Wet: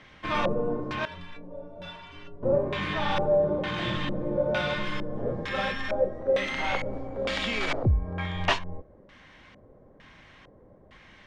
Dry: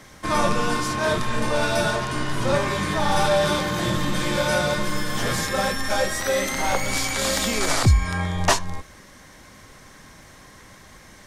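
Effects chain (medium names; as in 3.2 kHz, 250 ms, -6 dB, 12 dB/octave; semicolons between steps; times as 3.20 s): LFO low-pass square 1.1 Hz 530–2900 Hz; 1.05–2.43 s: inharmonic resonator 84 Hz, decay 0.54 s, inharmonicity 0.03; trim -7 dB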